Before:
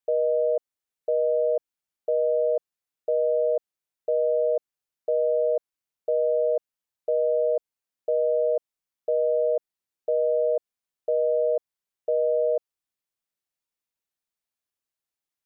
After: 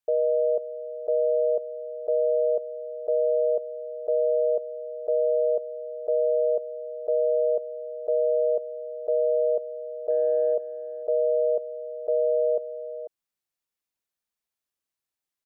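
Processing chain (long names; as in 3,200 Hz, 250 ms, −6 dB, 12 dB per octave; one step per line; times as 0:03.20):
0:10.10–0:10.54: transient designer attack −4 dB, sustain +5 dB
single-tap delay 494 ms −12.5 dB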